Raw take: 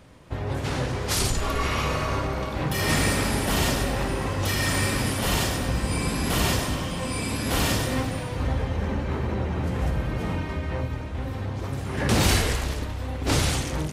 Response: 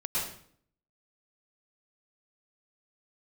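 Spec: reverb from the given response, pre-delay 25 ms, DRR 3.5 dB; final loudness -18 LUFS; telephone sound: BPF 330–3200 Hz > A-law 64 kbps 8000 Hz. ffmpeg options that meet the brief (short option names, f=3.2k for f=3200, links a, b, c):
-filter_complex "[0:a]asplit=2[a][b];[1:a]atrim=start_sample=2205,adelay=25[c];[b][c]afir=irnorm=-1:irlink=0,volume=-10dB[d];[a][d]amix=inputs=2:normalize=0,highpass=330,lowpass=3.2k,volume=11dB" -ar 8000 -c:a pcm_alaw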